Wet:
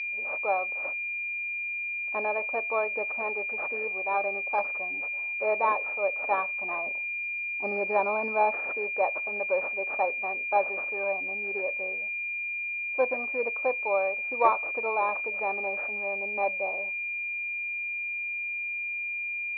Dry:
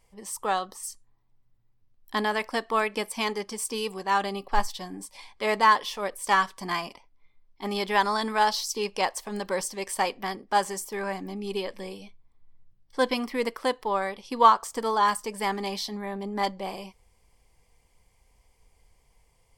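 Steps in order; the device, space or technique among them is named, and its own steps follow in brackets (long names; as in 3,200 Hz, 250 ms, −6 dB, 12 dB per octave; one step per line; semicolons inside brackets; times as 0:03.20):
0:06.86–0:08.51: RIAA equalisation playback
toy sound module (linearly interpolated sample-rate reduction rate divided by 6×; switching amplifier with a slow clock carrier 2,400 Hz; loudspeaker in its box 590–4,600 Hz, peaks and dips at 590 Hz +8 dB, 1,000 Hz −5 dB, 1,500 Hz −5 dB, 2,600 Hz −6 dB, 3,700 Hz −7 dB)
level +1.5 dB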